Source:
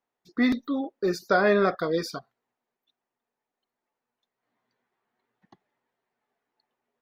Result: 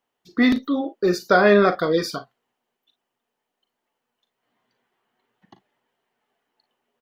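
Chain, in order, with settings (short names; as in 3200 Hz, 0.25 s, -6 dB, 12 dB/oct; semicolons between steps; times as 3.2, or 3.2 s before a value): bell 3000 Hz +9.5 dB 0.21 oct; on a send: early reflections 39 ms -12.5 dB, 54 ms -18 dB; on the sum: gain +5.5 dB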